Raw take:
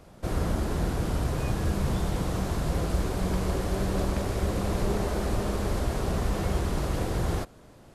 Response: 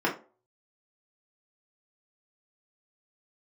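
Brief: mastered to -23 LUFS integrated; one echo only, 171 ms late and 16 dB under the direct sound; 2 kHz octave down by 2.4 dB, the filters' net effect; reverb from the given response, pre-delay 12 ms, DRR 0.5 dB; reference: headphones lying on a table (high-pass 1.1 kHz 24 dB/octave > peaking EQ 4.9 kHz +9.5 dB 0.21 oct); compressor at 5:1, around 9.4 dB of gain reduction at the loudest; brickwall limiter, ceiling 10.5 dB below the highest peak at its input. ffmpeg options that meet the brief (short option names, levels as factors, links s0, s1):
-filter_complex "[0:a]equalizer=f=2000:t=o:g=-3,acompressor=threshold=0.0224:ratio=5,alimiter=level_in=3.16:limit=0.0631:level=0:latency=1,volume=0.316,aecho=1:1:171:0.158,asplit=2[s0][s1];[1:a]atrim=start_sample=2205,adelay=12[s2];[s1][s2]afir=irnorm=-1:irlink=0,volume=0.224[s3];[s0][s3]amix=inputs=2:normalize=0,highpass=f=1100:w=0.5412,highpass=f=1100:w=1.3066,equalizer=f=4900:t=o:w=0.21:g=9.5,volume=26.6"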